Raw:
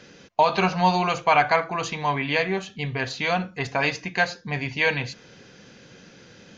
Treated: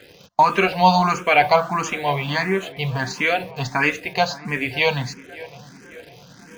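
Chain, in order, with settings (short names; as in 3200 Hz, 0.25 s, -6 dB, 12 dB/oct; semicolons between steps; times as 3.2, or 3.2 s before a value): in parallel at -5.5 dB: bit-crush 7-bit; on the sum: tape echo 0.556 s, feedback 72%, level -17 dB, low-pass 1500 Hz; endless phaser +1.5 Hz; gain +3 dB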